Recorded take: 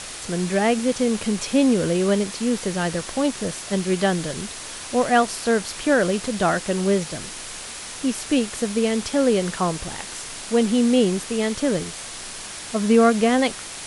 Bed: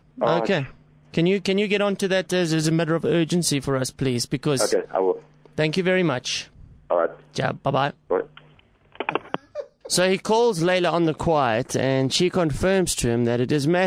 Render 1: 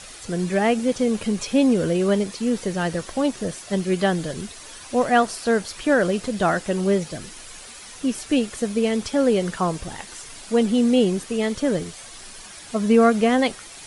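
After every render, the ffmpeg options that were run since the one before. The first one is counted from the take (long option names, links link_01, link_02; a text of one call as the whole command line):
ffmpeg -i in.wav -af "afftdn=noise_reduction=9:noise_floor=-35" out.wav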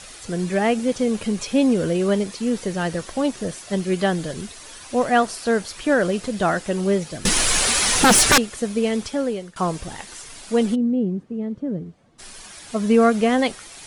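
ffmpeg -i in.wav -filter_complex "[0:a]asettb=1/sr,asplit=3[link_01][link_02][link_03];[link_01]atrim=end=7.254[link_04];[link_02]atrim=start=7.25:end=8.38,asetpts=PTS-STARTPTS,afade=type=in:duration=0.004:curve=qsin,afade=type=out:start_time=1.126:duration=0.004:curve=qsin,aeval=exprs='0.355*sin(PI/2*7.94*val(0)/0.355)':channel_layout=same[link_05];[link_03]atrim=start=8.376[link_06];[link_04][link_05]acrossfade=duration=0.004:curve1=hsin:curve2=qsin[link_07];[link_07][link_06]acrossfade=duration=0.004:curve1=qsin:curve2=hsin,asplit=3[link_08][link_09][link_10];[link_08]afade=type=out:start_time=10.74:duration=0.02[link_11];[link_09]bandpass=frequency=180:width_type=q:width=1.2,afade=type=in:start_time=10.74:duration=0.02,afade=type=out:start_time=12.18:duration=0.02[link_12];[link_10]afade=type=in:start_time=12.18:duration=0.02[link_13];[link_11][link_12][link_13]amix=inputs=3:normalize=0,asplit=2[link_14][link_15];[link_14]atrim=end=9.56,asetpts=PTS-STARTPTS,afade=type=out:start_time=8.99:duration=0.57:silence=0.0749894[link_16];[link_15]atrim=start=9.56,asetpts=PTS-STARTPTS,afade=type=in:duration=0.004:curve=hsin:silence=0.0749894[link_17];[link_16][link_17]concat=n=2:v=0:a=1" out.wav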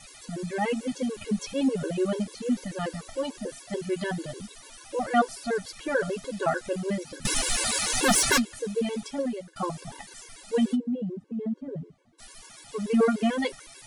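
ffmpeg -i in.wav -af "flanger=delay=7.1:depth=2.2:regen=54:speed=1.1:shape=sinusoidal,afftfilt=real='re*gt(sin(2*PI*6.8*pts/sr)*(1-2*mod(floor(b*sr/1024/290),2)),0)':imag='im*gt(sin(2*PI*6.8*pts/sr)*(1-2*mod(floor(b*sr/1024/290),2)),0)':win_size=1024:overlap=0.75" out.wav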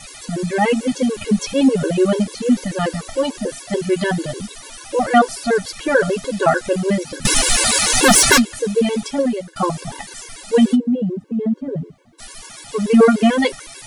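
ffmpeg -i in.wav -af "volume=11dB,alimiter=limit=-1dB:level=0:latency=1" out.wav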